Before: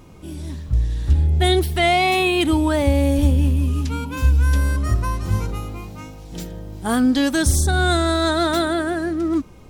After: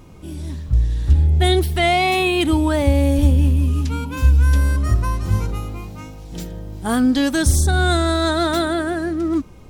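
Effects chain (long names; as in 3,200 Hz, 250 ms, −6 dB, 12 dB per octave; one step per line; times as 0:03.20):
low-shelf EQ 140 Hz +3 dB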